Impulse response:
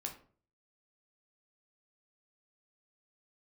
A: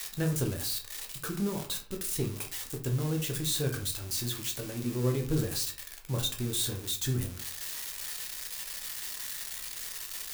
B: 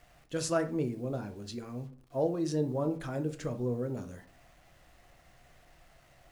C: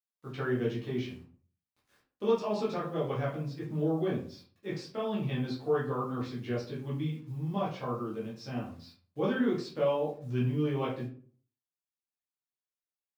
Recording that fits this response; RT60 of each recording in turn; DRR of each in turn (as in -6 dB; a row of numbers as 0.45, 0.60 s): A; 0.45, 0.45, 0.45 s; 2.0, 7.5, -7.0 dB